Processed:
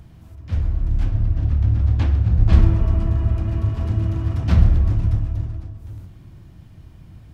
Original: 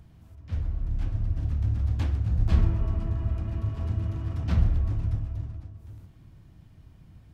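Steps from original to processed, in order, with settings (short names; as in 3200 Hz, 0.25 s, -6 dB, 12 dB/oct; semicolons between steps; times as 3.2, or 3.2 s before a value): 1.11–2.53 air absorption 83 m; reverb RT60 1.7 s, pre-delay 3 ms, DRR 13.5 dB; gain +8 dB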